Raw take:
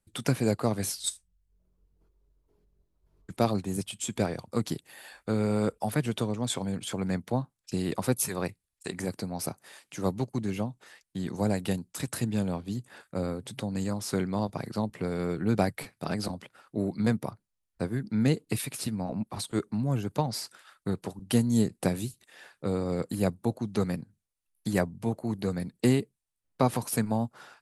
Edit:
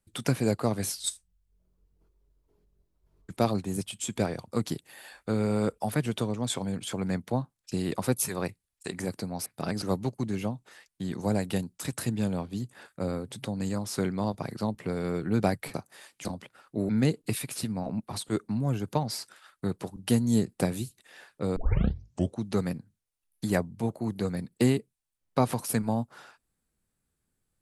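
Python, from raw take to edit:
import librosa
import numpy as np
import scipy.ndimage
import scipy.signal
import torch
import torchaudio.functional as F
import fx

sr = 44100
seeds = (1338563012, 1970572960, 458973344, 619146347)

y = fx.edit(x, sr, fx.swap(start_s=9.46, length_s=0.51, other_s=15.89, other_length_s=0.36),
    fx.cut(start_s=16.89, length_s=1.23),
    fx.tape_start(start_s=22.79, length_s=0.86), tone=tone)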